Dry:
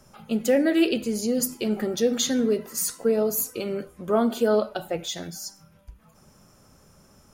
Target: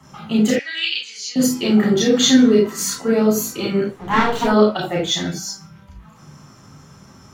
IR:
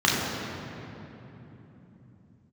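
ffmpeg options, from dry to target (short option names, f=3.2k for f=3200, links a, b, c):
-filter_complex "[0:a]asettb=1/sr,asplit=3[a][b][c];[a]atrim=end=0.504[d];[b]atrim=start=0.5:end=1.36,asetpts=PTS-STARTPTS,afade=t=in:d=0.004:c=qsin,afade=t=out:st=0.856:d=0.004:c=qsin,asuperpass=centerf=3900:order=4:qfactor=0.93[e];[c]atrim=start=1.356[f];[d][e]acrossfade=d=0.004:c1=hsin:c2=qsin[g];[g][f]acrossfade=d=0.004:c1=qsin:c2=hsin,asplit=3[h][i][j];[h]afade=t=out:st=3.87:d=0.02[k];[i]aeval=exprs='abs(val(0))':c=same,afade=t=in:st=3.87:d=0.02,afade=t=out:st=4.43:d=0.02[l];[j]afade=t=in:st=4.43:d=0.02[m];[k][l][m]amix=inputs=3:normalize=0[n];[1:a]atrim=start_sample=2205,atrim=end_sample=3969[o];[n][o]afir=irnorm=-1:irlink=0,volume=-5dB"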